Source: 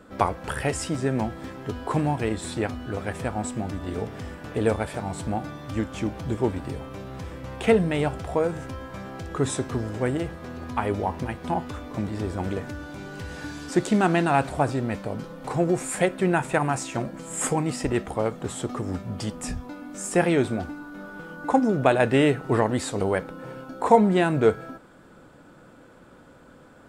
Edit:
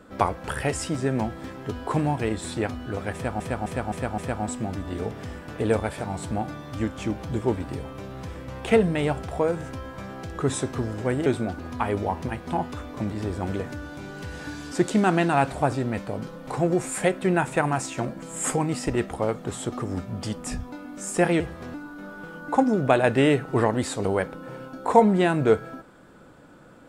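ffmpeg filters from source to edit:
-filter_complex "[0:a]asplit=9[s0][s1][s2][s3][s4][s5][s6][s7][s8];[s0]atrim=end=3.402[s9];[s1]atrim=start=3.138:end=3.402[s10];[s2]atrim=start=3.138:end=3.402[s11];[s3]atrim=start=3.138:end=3.402[s12];[s4]atrim=start=3.138:end=10.222[s13];[s5]atrim=start=20.368:end=20.702[s14];[s6]atrim=start=10.558:end=20.372[s15];[s7]atrim=start=10.218:end=10.562[s16];[s8]atrim=start=20.698[s17];[s9][s10]acrossfade=d=0.004:c1=hsin:c2=hsin[s18];[s18][s11]acrossfade=d=0.004:c1=hsin:c2=hsin[s19];[s19][s12]acrossfade=d=0.004:c1=hsin:c2=hsin[s20];[s20][s13]acrossfade=d=0.004:c1=hsin:c2=hsin[s21];[s21][s14]acrossfade=d=0.004:c1=hsin:c2=hsin[s22];[s22][s15]acrossfade=d=0.004:c1=hsin:c2=hsin[s23];[s23][s16]acrossfade=d=0.004:c1=hsin:c2=hsin[s24];[s24][s17]acrossfade=d=0.004:c1=hsin:c2=hsin"

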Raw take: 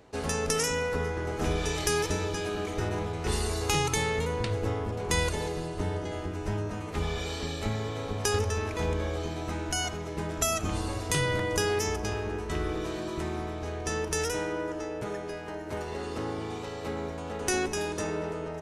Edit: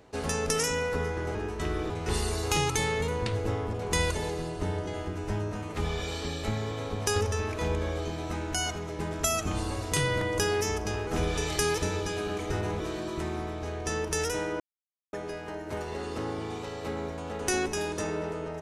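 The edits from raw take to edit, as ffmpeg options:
-filter_complex "[0:a]asplit=7[s0][s1][s2][s3][s4][s5][s6];[s0]atrim=end=1.352[s7];[s1]atrim=start=12.248:end=12.802[s8];[s2]atrim=start=3.078:end=12.252[s9];[s3]atrim=start=1.348:end=3.082[s10];[s4]atrim=start=12.798:end=14.6,asetpts=PTS-STARTPTS,afade=t=out:st=1.798:d=0.004:c=hsin[s11];[s5]atrim=start=14.6:end=15.13,asetpts=PTS-STARTPTS,volume=0[s12];[s6]atrim=start=15.13,asetpts=PTS-STARTPTS,afade=t=in:d=0.004:c=hsin[s13];[s7][s8]acrossfade=d=0.004:c1=hsin:c2=hsin[s14];[s14][s9]acrossfade=d=0.004:c1=hsin:c2=hsin[s15];[s15][s10]acrossfade=d=0.004:c1=hsin:c2=hsin[s16];[s11][s12][s13]concat=n=3:v=0:a=1[s17];[s16][s17]acrossfade=d=0.004:c1=hsin:c2=hsin"

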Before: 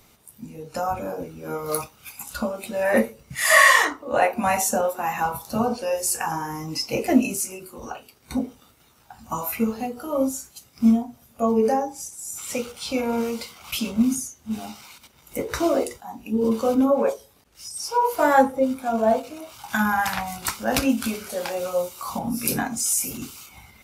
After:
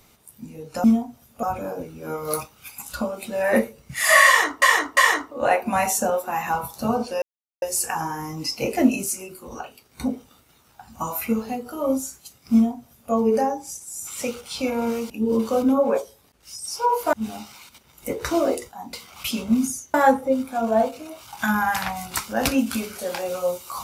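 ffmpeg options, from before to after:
-filter_complex "[0:a]asplit=10[s0][s1][s2][s3][s4][s5][s6][s7][s8][s9];[s0]atrim=end=0.842[s10];[s1]atrim=start=10.838:end=11.432[s11];[s2]atrim=start=0.838:end=4.032[s12];[s3]atrim=start=3.678:end=4.032[s13];[s4]atrim=start=3.678:end=5.93,asetpts=PTS-STARTPTS,afade=t=out:st=2.248:d=0.004:c=hsin,apad=pad_dur=0.4[s14];[s5]atrim=start=5.93:end=13.412,asetpts=PTS-STARTPTS,afade=t=in:d=0.004:c=hsin[s15];[s6]atrim=start=16.218:end=18.252[s16];[s7]atrim=start=14.418:end=16.222[s17];[s8]atrim=start=13.408:end=14.422[s18];[s9]atrim=start=18.248[s19];[s10][s11]acrossfade=d=0.004:c1=hsin:c2=hsin[s20];[s20][s12]acrossfade=d=0.004:c1=hsin:c2=hsin[s21];[s21][s13]acrossfade=d=0.004:c1=hsin:c2=hsin[s22];[s14][s15]concat=n=2:v=0:a=1[s23];[s22][s23]acrossfade=d=0.004:c1=hsin:c2=hsin[s24];[s24][s16]acrossfade=d=0.004:c1=hsin:c2=hsin[s25];[s25][s17]acrossfade=d=0.004:c1=hsin:c2=hsin[s26];[s26][s18]acrossfade=d=0.004:c1=hsin:c2=hsin[s27];[s27][s19]acrossfade=d=0.004:c1=hsin:c2=hsin"

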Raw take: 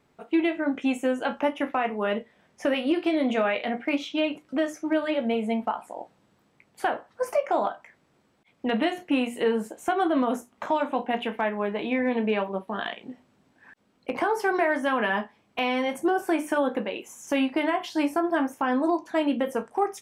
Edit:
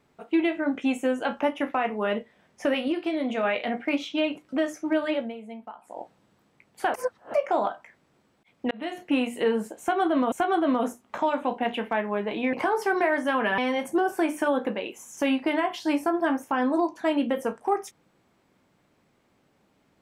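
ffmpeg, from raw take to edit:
-filter_complex "[0:a]asplit=11[s0][s1][s2][s3][s4][s5][s6][s7][s8][s9][s10];[s0]atrim=end=2.882[s11];[s1]atrim=start=2.878:end=3.432,asetpts=PTS-STARTPTS,volume=0.668[s12];[s2]atrim=start=3.428:end=5.33,asetpts=PTS-STARTPTS,afade=t=out:st=1.722:d=0.18:silence=0.211349[s13];[s3]atrim=start=5.33:end=5.81,asetpts=PTS-STARTPTS,volume=0.211[s14];[s4]atrim=start=5.81:end=6.942,asetpts=PTS-STARTPTS,afade=t=in:d=0.18:silence=0.211349[s15];[s5]atrim=start=6.938:end=7.342,asetpts=PTS-STARTPTS,areverse[s16];[s6]atrim=start=7.338:end=8.71,asetpts=PTS-STARTPTS,afade=t=out:st=1.368:d=0.004:c=hsin[s17];[s7]atrim=start=8.71:end=10.322,asetpts=PTS-STARTPTS,afade=t=in:d=0.36[s18];[s8]atrim=start=9.798:end=12.012[s19];[s9]atrim=start=14.108:end=15.162[s20];[s10]atrim=start=15.678[s21];[s11][s12]acrossfade=d=0.004:c1=hsin:c2=hsin[s22];[s13][s14][s15]concat=n=3:v=0:a=1[s23];[s22][s23]acrossfade=d=0.004:c1=hsin:c2=hsin[s24];[s24][s16]acrossfade=d=0.004:c1=hsin:c2=hsin[s25];[s17][s18]concat=n=2:v=0:a=1[s26];[s25][s26]acrossfade=d=0.004:c1=hsin:c2=hsin[s27];[s27][s19]acrossfade=d=0.004:c1=hsin:c2=hsin[s28];[s28][s20]acrossfade=d=0.004:c1=hsin:c2=hsin[s29];[s29][s21]acrossfade=d=0.004:c1=hsin:c2=hsin"

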